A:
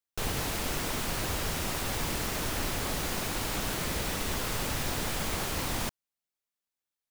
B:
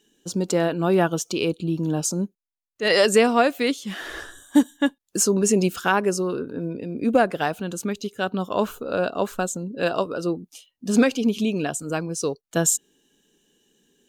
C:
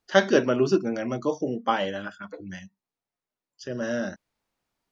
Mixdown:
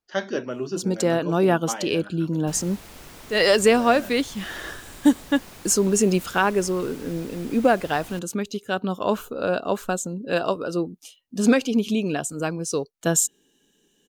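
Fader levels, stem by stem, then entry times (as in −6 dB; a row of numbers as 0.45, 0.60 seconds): −11.5, 0.0, −7.5 decibels; 2.30, 0.50, 0.00 seconds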